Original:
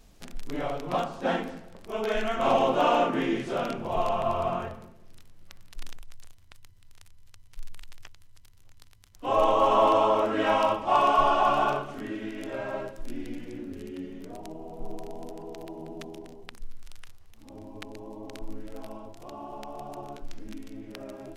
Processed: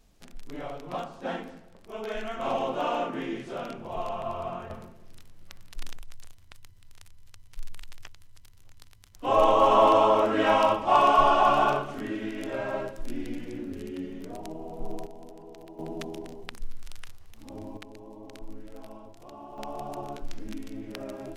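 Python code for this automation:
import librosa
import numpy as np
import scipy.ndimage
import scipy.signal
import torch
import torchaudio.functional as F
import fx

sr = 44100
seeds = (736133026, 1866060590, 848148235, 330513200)

y = fx.gain(x, sr, db=fx.steps((0.0, -6.0), (4.7, 2.0), (15.06, -6.0), (15.79, 4.0), (17.77, -4.0), (19.58, 3.0)))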